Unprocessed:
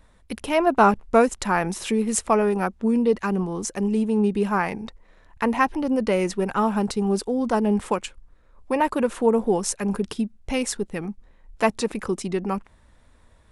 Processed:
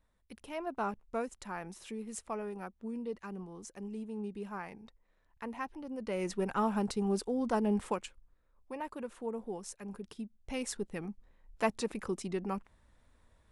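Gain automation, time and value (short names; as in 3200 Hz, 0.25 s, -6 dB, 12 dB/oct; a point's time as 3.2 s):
5.94 s -19 dB
6.34 s -9 dB
7.81 s -9 dB
8.75 s -19 dB
10 s -19 dB
10.8 s -10 dB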